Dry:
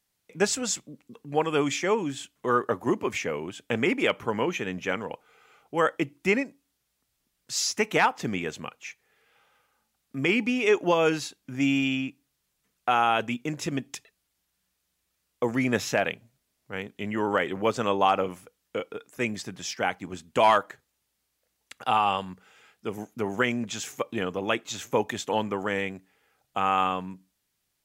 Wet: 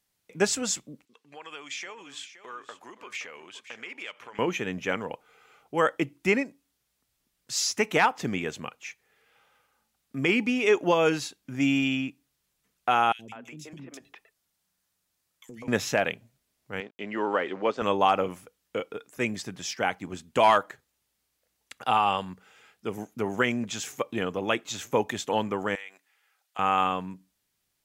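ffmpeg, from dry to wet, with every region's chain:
ffmpeg -i in.wav -filter_complex "[0:a]asettb=1/sr,asplit=3[link_01][link_02][link_03];[link_01]atrim=end=1.054[link_04];[link_02]atrim=start=1.05:end=4.39,asetpts=PTS-STARTPTS,afade=type=in:duration=0.004:curve=qsin,afade=type=out:start_time=3.336:duration=0.004:curve=qsin,acompressor=threshold=-30dB:ratio=5:attack=3.2:release=140:knee=1:detection=peak,bandpass=frequency=3200:width_type=q:width=0.61,aecho=1:1:521:0.224,atrim=end_sample=147294[link_05];[link_03]atrim=start=4.386[link_06];[link_04][link_05]acrossfade=duration=0.004:curve1=hsin:curve2=qsin[link_07];[link_07][link_06]acrossfade=duration=0.004:curve1=qsin:curve2=hsin,asettb=1/sr,asplit=3[link_08][link_09][link_10];[link_08]atrim=end=13.124[link_11];[link_09]atrim=start=13.12:end=15.68,asetpts=PTS-STARTPTS,afade=type=in:duration=0.004:curve=qsin,afade=type=out:start_time=2.556:duration=0.004:curve=qsin,acrossover=split=340|2600[link_12][link_13][link_14];[link_12]adelay=70[link_15];[link_13]adelay=200[link_16];[link_15][link_16][link_14]amix=inputs=3:normalize=0,atrim=end_sample=112896,acompressor=threshold=-41dB:ratio=5:attack=3.2:release=140:knee=1:detection=peak,bandreject=frequency=60:width_type=h:width=6,bandreject=frequency=120:width_type=h:width=6,bandreject=frequency=180:width_type=h:width=6[link_17];[link_10]atrim=start=15.676[link_18];[link_11][link_17]acrossfade=duration=0.004:curve1=hsin:curve2=qsin[link_19];[link_19][link_18]acrossfade=duration=0.004:curve1=qsin:curve2=hsin,asettb=1/sr,asplit=3[link_20][link_21][link_22];[link_20]atrim=end=16.804[link_23];[link_21]atrim=start=16.8:end=17.82,asetpts=PTS-STARTPTS,afade=type=in:duration=0.004:curve=qsin,afade=type=out:start_time=1.016:duration=0.004:curve=qsin,deesser=1,aeval=exprs='sgn(val(0))*max(abs(val(0))-0.00168,0)':channel_layout=same,highpass=270,lowpass=4400[link_24];[link_22]atrim=start=17.816[link_25];[link_23][link_24]acrossfade=duration=0.004:curve1=hsin:curve2=qsin[link_26];[link_26][link_25]acrossfade=duration=0.004:curve1=qsin:curve2=hsin,asettb=1/sr,asplit=3[link_27][link_28][link_29];[link_27]atrim=end=25.754[link_30];[link_28]atrim=start=25.75:end=26.59,asetpts=PTS-STARTPTS,afade=type=in:duration=0.004:curve=qsin,afade=type=out:start_time=0.836:duration=0.004:curve=qsin,highpass=1100,acompressor=threshold=-40dB:ratio=2.5:attack=3.2:release=140:knee=1:detection=peak[link_31];[link_29]atrim=start=26.586[link_32];[link_30][link_31]acrossfade=duration=0.004:curve1=hsin:curve2=qsin[link_33];[link_33][link_32]acrossfade=duration=0.004:curve1=qsin:curve2=hsin" out.wav

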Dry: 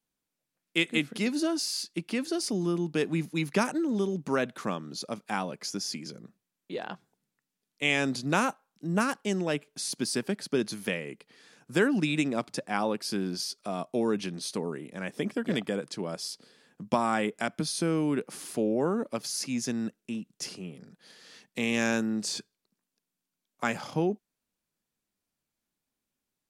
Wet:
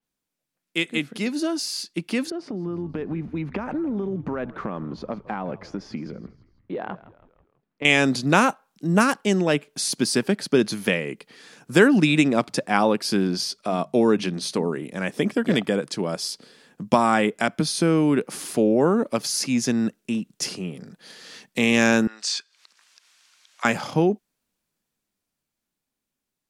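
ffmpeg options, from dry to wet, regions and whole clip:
ffmpeg -i in.wav -filter_complex "[0:a]asettb=1/sr,asplit=3[link_01][link_02][link_03];[link_01]atrim=end=2.304[link_04];[link_02]atrim=start=2.3:end=7.85,asetpts=PTS-STARTPTS,afade=type=in:duration=0.004:curve=qsin,afade=type=out:start_time=5.546:duration=0.004:curve=qsin,lowpass=1500,acompressor=threshold=-33dB:ratio=12:attack=3.2:release=140:knee=1:detection=peak,asplit=5[link_05][link_06][link_07][link_08][link_09];[link_06]adelay=163,afreqshift=-82,volume=-18dB[link_10];[link_07]adelay=326,afreqshift=-164,volume=-24.2dB[link_11];[link_08]adelay=489,afreqshift=-246,volume=-30.4dB[link_12];[link_09]adelay=652,afreqshift=-328,volume=-36.6dB[link_13];[link_05][link_10][link_11][link_12][link_13]amix=inputs=5:normalize=0,atrim=end_sample=244755[link_14];[link_03]atrim=start=7.846[link_15];[link_04][link_14]acrossfade=duration=0.004:curve1=hsin:curve2=qsin[link_16];[link_16][link_15]acrossfade=duration=0.004:curve1=qsin:curve2=hsin,asettb=1/sr,asplit=3[link_17][link_18][link_19];[link_17]atrim=end=13.274[link_20];[link_18]atrim=start=13.27:end=14.83,asetpts=PTS-STARTPTS,afade=type=in:duration=0.004:curve=qsin,afade=type=out:start_time=1.556:duration=0.004:curve=qsin,highshelf=frequency=8000:gain=-6.5,bandreject=frequency=50:width_type=h:width=6,bandreject=frequency=100:width_type=h:width=6,bandreject=frequency=150:width_type=h:width=6,bandreject=frequency=200:width_type=h:width=6[link_21];[link_19]atrim=start=14.826[link_22];[link_20][link_21]acrossfade=duration=0.004:curve1=hsin:curve2=qsin[link_23];[link_23][link_22]acrossfade=duration=0.004:curve1=qsin:curve2=hsin,asettb=1/sr,asplit=3[link_24][link_25][link_26];[link_24]atrim=end=22.074[link_27];[link_25]atrim=start=22.07:end=23.65,asetpts=PTS-STARTPTS,afade=type=in:duration=0.004:curve=qsin,afade=type=out:start_time=1.576:duration=0.004:curve=qsin,acompressor=mode=upward:threshold=-41dB:ratio=2.5:attack=3.2:release=140:knee=2.83:detection=peak,asuperpass=centerf=2900:order=4:qfactor=0.54[link_28];[link_26]atrim=start=23.646[link_29];[link_27][link_28]acrossfade=duration=0.004:curve1=hsin:curve2=qsin[link_30];[link_30][link_29]acrossfade=duration=0.004:curve1=qsin:curve2=hsin,dynaudnorm=framelen=140:gausssize=31:maxgain=8.5dB,adynamicequalizer=threshold=0.01:dfrequency=5000:dqfactor=0.7:tfrequency=5000:tqfactor=0.7:attack=5:release=100:ratio=0.375:range=2.5:mode=cutabove:tftype=highshelf,volume=1.5dB" out.wav

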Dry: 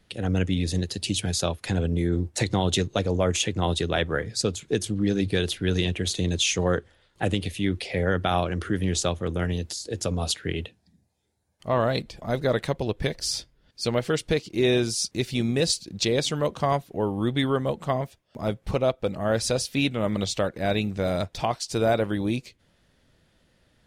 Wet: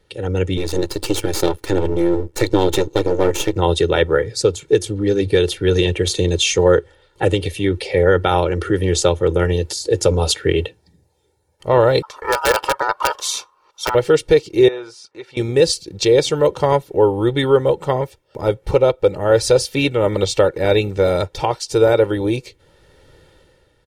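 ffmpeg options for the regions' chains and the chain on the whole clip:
ffmpeg -i in.wav -filter_complex "[0:a]asettb=1/sr,asplit=3[link_01][link_02][link_03];[link_01]atrim=end=0.574[link_04];[link_02]atrim=start=0.57:end=3.56,asetpts=PTS-STARTPTS,afade=type=in:duration=0.004:curve=qsin,afade=type=out:start_time=2.986:duration=0.004:curve=qsin,aeval=exprs='max(val(0),0)':channel_layout=same,equalizer=frequency=320:width=4:gain=8.5[link_05];[link_03]atrim=start=3.556[link_06];[link_04][link_05]acrossfade=duration=0.004:curve1=hsin:curve2=qsin[link_07];[link_07][link_06]acrossfade=duration=0.004:curve1=qsin:curve2=hsin,asettb=1/sr,asplit=3[link_08][link_09][link_10];[link_08]atrim=end=12.024[link_11];[link_09]atrim=start=12.02:end=13.95,asetpts=PTS-STARTPTS,afade=type=in:duration=0.004:curve=qsin,afade=type=out:start_time=1.926:duration=0.004:curve=qsin,aeval=exprs='(mod(4.73*val(0)+1,2)-1)/4.73':channel_layout=same,aeval=exprs='val(0)*sin(2*PI*1100*n/s)':channel_layout=same[link_12];[link_10]atrim=start=13.946[link_13];[link_11][link_12]acrossfade=duration=0.004:curve1=hsin:curve2=qsin[link_14];[link_14][link_13]acrossfade=duration=0.004:curve1=qsin:curve2=hsin,asettb=1/sr,asplit=3[link_15][link_16][link_17];[link_15]atrim=end=14.684[link_18];[link_16]atrim=start=14.68:end=15.37,asetpts=PTS-STARTPTS,afade=type=in:duration=0.004:curve=qsin,afade=type=out:start_time=0.686:duration=0.004:curve=qsin,acompressor=threshold=-24dB:ratio=2:attack=3.2:release=140:knee=1:detection=peak,bandpass=frequency=1200:width_type=q:width=1.6[link_19];[link_17]atrim=start=15.366[link_20];[link_18][link_19]acrossfade=duration=0.004:curve1=hsin:curve2=qsin[link_21];[link_21][link_20]acrossfade=duration=0.004:curve1=qsin:curve2=hsin,equalizer=frequency=460:width_type=o:width=2.4:gain=6,aecho=1:1:2.2:0.75,dynaudnorm=framelen=120:gausssize=9:maxgain=11.5dB,volume=-1dB" out.wav

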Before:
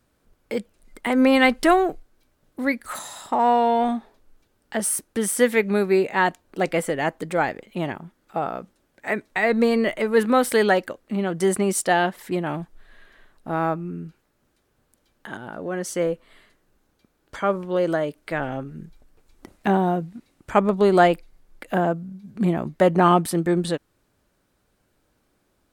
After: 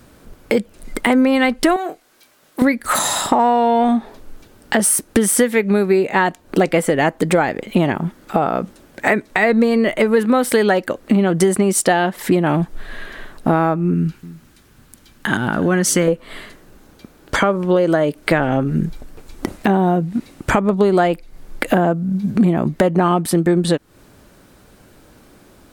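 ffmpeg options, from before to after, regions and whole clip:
ffmpeg -i in.wav -filter_complex "[0:a]asettb=1/sr,asplit=3[link_01][link_02][link_03];[link_01]atrim=end=1.764[link_04];[link_02]atrim=start=1.76:end=2.62,asetpts=PTS-STARTPTS,afade=type=in:duration=0.004:curve=qsin,afade=type=out:start_time=0.856:duration=0.004:curve=qsin,highpass=frequency=1300:poles=1,asplit=2[link_05][link_06];[link_06]adelay=25,volume=-10.5dB[link_07];[link_05][link_07]amix=inputs=2:normalize=0,atrim=end_sample=37926[link_08];[link_03]atrim=start=2.616[link_09];[link_04][link_08]acrossfade=duration=0.004:curve1=hsin:curve2=qsin[link_10];[link_10][link_09]acrossfade=duration=0.004:curve1=qsin:curve2=hsin,asettb=1/sr,asplit=3[link_11][link_12][link_13];[link_11]atrim=end=13.944[link_14];[link_12]atrim=start=13.94:end=16.08,asetpts=PTS-STARTPTS,afade=type=in:duration=0.004:curve=qsin,afade=type=out:start_time=2.136:duration=0.004:curve=qsin,equalizer=frequency=540:width_type=o:width=1.5:gain=-9.5,aecho=1:1:290:0.0891,atrim=end_sample=94374[link_15];[link_13]atrim=start=16.076[link_16];[link_14][link_15]acrossfade=duration=0.004:curve1=hsin:curve2=qsin[link_17];[link_17][link_16]acrossfade=duration=0.004:curve1=qsin:curve2=hsin,equalizer=frequency=220:width_type=o:width=2.1:gain=3,acompressor=threshold=-31dB:ratio=10,alimiter=level_in=20dB:limit=-1dB:release=50:level=0:latency=1,volume=-1dB" out.wav

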